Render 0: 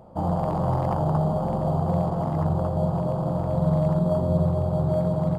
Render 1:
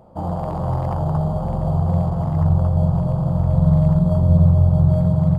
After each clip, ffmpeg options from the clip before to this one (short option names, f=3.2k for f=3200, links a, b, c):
-af "asubboost=boost=8.5:cutoff=120"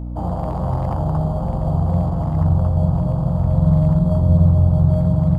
-af "aeval=exprs='val(0)+0.0501*(sin(2*PI*60*n/s)+sin(2*PI*2*60*n/s)/2+sin(2*PI*3*60*n/s)/3+sin(2*PI*4*60*n/s)/4+sin(2*PI*5*60*n/s)/5)':c=same"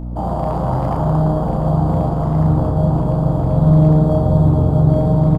-filter_complex "[0:a]equalizer=f=82:t=o:w=0.84:g=-11,asplit=2[a][b];[b]adelay=32,volume=-5dB[c];[a][c]amix=inputs=2:normalize=0,asplit=6[d][e][f][g][h][i];[e]adelay=113,afreqshift=150,volume=-12dB[j];[f]adelay=226,afreqshift=300,volume=-18.4dB[k];[g]adelay=339,afreqshift=450,volume=-24.8dB[l];[h]adelay=452,afreqshift=600,volume=-31.1dB[m];[i]adelay=565,afreqshift=750,volume=-37.5dB[n];[d][j][k][l][m][n]amix=inputs=6:normalize=0,volume=3.5dB"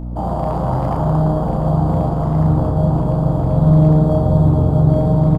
-af anull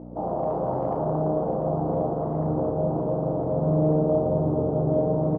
-af "bandpass=f=460:t=q:w=1.7:csg=0"